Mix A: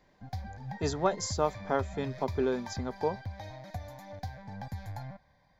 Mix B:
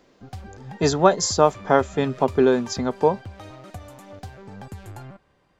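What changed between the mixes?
speech +12.0 dB
background: remove phaser with its sweep stopped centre 1,900 Hz, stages 8

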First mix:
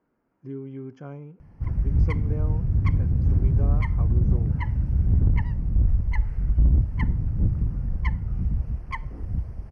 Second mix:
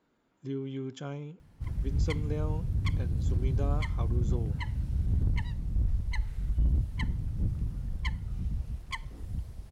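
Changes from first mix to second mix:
background −8.0 dB
master: remove moving average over 12 samples

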